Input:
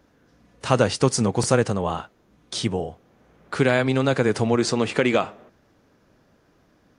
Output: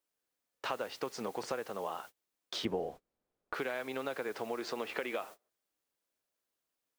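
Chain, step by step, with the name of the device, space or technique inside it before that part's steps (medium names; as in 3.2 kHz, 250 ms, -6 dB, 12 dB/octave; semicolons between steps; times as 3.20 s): baby monitor (band-pass 430–3500 Hz; compression 6:1, threshold -32 dBFS, peak gain reduction 16 dB; white noise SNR 18 dB; gate -46 dBFS, range -29 dB); 2.65–3.54 s: tilt EQ -3.5 dB/octave; trim -2.5 dB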